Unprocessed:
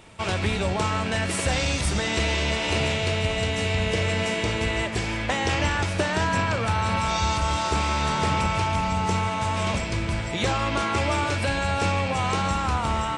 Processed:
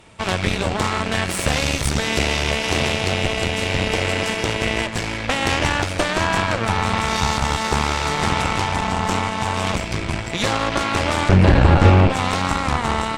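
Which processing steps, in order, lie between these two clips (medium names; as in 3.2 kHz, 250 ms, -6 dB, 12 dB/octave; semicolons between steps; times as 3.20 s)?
11.29–12.10 s: RIAA curve playback; Chebyshev shaper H 6 -9 dB, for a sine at -4.5 dBFS; trim +1 dB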